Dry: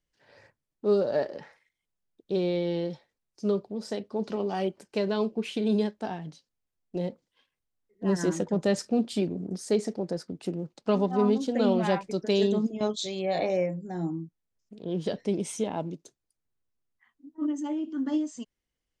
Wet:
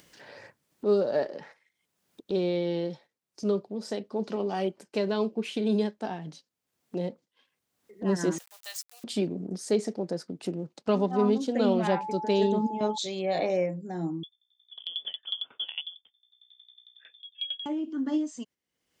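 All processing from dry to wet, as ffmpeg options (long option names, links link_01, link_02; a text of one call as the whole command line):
ffmpeg -i in.wav -filter_complex "[0:a]asettb=1/sr,asplit=3[link_01][link_02][link_03];[link_01]atrim=end=8.384[link_04];[link_02]atrim=start=8.38:end=9.04,asetpts=PTS-STARTPTS,afade=type=in:duration=0.004:curve=qsin,afade=type=out:start_time=0.656:duration=0.004:curve=qsin,aeval=exprs='val(0)*gte(abs(val(0)),0.0112)':channel_layout=same,highpass=frequency=770:width=0.5412,highpass=frequency=770:width=1.3066,aderivative[link_05];[link_03]atrim=start=9.036[link_06];[link_04][link_05]acrossfade=duration=0.004:curve1=hsin:curve2=qsin[link_07];[link_07][link_06]acrossfade=duration=0.004:curve1=qsin:curve2=hsin,asettb=1/sr,asplit=3[link_08][link_09][link_10];[link_08]atrim=end=11.874[link_11];[link_09]atrim=start=11.87:end=12.98,asetpts=PTS-STARTPTS,afade=type=in:duration=0.004:curve=qsin,afade=type=out:start_time=1.106:duration=0.004:curve=qsin,highshelf=frequency=3800:gain=-7.5,acompressor=mode=upward:threshold=-30dB:ratio=2.5:attack=3.2:release=140:knee=2.83:detection=peak,aeval=exprs='val(0)+0.0224*sin(2*PI*860*n/s)':channel_layout=same[link_12];[link_10]atrim=start=12.976[link_13];[link_11][link_12]acrossfade=duration=0.004:curve1=hsin:curve2=qsin[link_14];[link_14][link_13]acrossfade=duration=0.004:curve1=qsin:curve2=hsin,asettb=1/sr,asplit=3[link_15][link_16][link_17];[link_15]atrim=end=14.234[link_18];[link_16]atrim=start=14.23:end=17.66,asetpts=PTS-STARTPTS,afade=type=in:duration=0.004:curve=qsin,afade=type=out:start_time=3.426:duration=0.004:curve=qsin,aeval=exprs='val(0)+0.000501*(sin(2*PI*60*n/s)+sin(2*PI*2*60*n/s)/2+sin(2*PI*3*60*n/s)/3+sin(2*PI*4*60*n/s)/4+sin(2*PI*5*60*n/s)/5)':channel_layout=same,lowpass=frequency=3100:width_type=q:width=0.5098,lowpass=frequency=3100:width_type=q:width=0.6013,lowpass=frequency=3100:width_type=q:width=0.9,lowpass=frequency=3100:width_type=q:width=2.563,afreqshift=-3600,aeval=exprs='val(0)*pow(10,-21*if(lt(mod(11*n/s,1),2*abs(11)/1000),1-mod(11*n/s,1)/(2*abs(11)/1000),(mod(11*n/s,1)-2*abs(11)/1000)/(1-2*abs(11)/1000))/20)':channel_layout=same[link_19];[link_17]atrim=start=17.656[link_20];[link_18][link_19]acrossfade=duration=0.004:curve1=hsin:curve2=qsin[link_21];[link_21][link_20]acrossfade=duration=0.004:curve1=qsin:curve2=hsin,agate=range=-8dB:threshold=-51dB:ratio=16:detection=peak,highpass=140,acompressor=mode=upward:threshold=-33dB:ratio=2.5" out.wav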